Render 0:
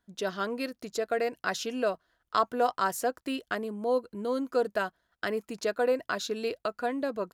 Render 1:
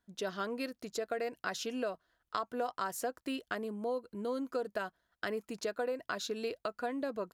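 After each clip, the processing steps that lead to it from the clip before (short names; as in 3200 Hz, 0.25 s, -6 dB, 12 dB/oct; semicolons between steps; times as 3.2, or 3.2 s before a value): compressor, threshold -28 dBFS, peak gain reduction 9 dB; gain -3.5 dB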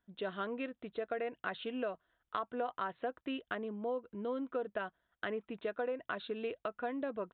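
downsampling 8000 Hz; gain -1.5 dB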